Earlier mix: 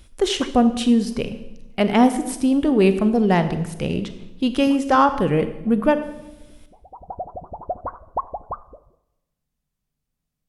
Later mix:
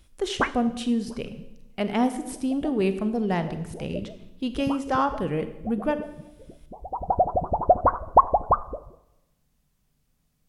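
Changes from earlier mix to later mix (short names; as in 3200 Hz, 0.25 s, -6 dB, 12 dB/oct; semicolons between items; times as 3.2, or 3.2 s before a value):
speech -8.0 dB; background +10.0 dB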